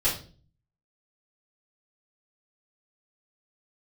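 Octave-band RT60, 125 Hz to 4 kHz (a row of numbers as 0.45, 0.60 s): 0.80, 0.60, 0.45, 0.35, 0.35, 0.35 s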